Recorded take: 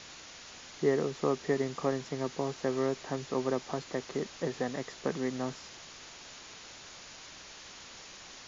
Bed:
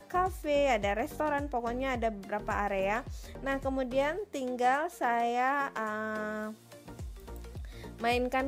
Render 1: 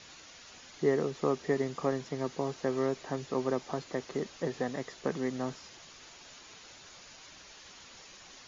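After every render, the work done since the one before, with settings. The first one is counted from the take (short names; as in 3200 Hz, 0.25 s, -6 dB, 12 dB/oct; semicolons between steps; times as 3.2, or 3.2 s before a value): denoiser 6 dB, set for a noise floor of -50 dBFS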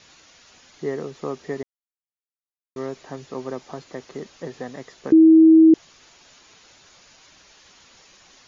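1.63–2.76 mute; 5.12–5.74 bleep 321 Hz -7.5 dBFS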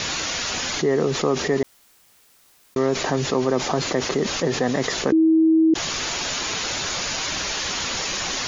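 limiter -12.5 dBFS, peak gain reduction 5 dB; fast leveller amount 70%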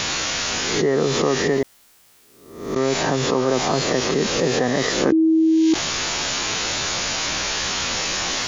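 spectral swells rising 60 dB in 0.73 s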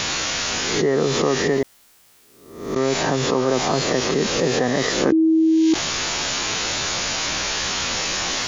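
nothing audible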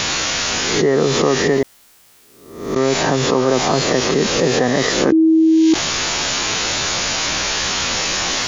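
gain +4 dB; limiter -3 dBFS, peak gain reduction 1.5 dB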